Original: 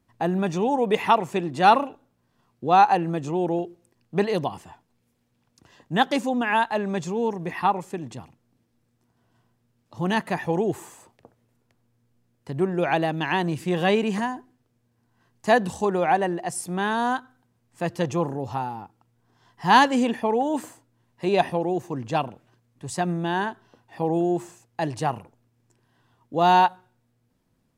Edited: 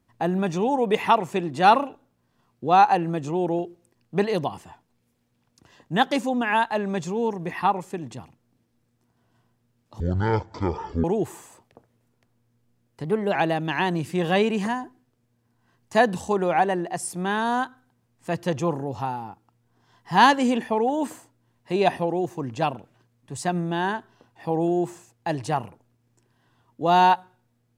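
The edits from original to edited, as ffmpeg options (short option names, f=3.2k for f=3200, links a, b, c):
-filter_complex "[0:a]asplit=5[a][b][c][d][e];[a]atrim=end=10.004[f];[b]atrim=start=10:end=10.52,asetpts=PTS-STARTPTS,asetrate=22050,aresample=44100[g];[c]atrim=start=10.516:end=12.524[h];[d]atrim=start=12.52:end=12.88,asetpts=PTS-STARTPTS,asetrate=50715,aresample=44100,atrim=end_sample=13805,asetpts=PTS-STARTPTS[i];[e]atrim=start=12.876[j];[f][g]acrossfade=d=0.004:c1=hsin:c2=hsin[k];[k][h]acrossfade=d=0.004:c1=hsin:c2=hsin[l];[l][i]acrossfade=d=0.004:c1=hsin:c2=hsin[m];[m][j]acrossfade=d=0.004:c1=hsin:c2=hsin"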